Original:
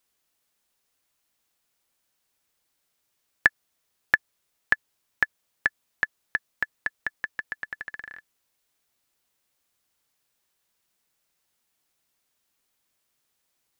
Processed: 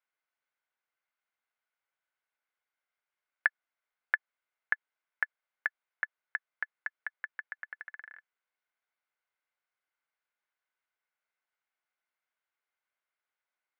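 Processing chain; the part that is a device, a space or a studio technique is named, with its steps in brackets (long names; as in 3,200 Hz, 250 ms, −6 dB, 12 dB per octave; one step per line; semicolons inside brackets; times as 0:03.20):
tin-can telephone (band-pass filter 620–2,200 Hz; hollow resonant body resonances 1,500/2,100 Hz, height 9 dB, ringing for 20 ms)
level −8.5 dB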